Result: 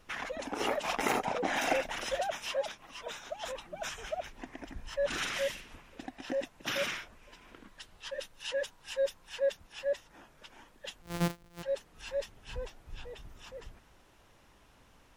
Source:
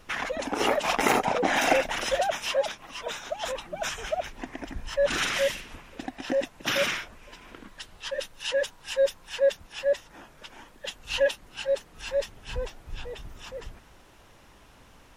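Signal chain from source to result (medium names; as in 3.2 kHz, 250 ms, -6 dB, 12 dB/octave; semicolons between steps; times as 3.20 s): 11.02–11.63 s: sorted samples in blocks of 256 samples; trim -7.5 dB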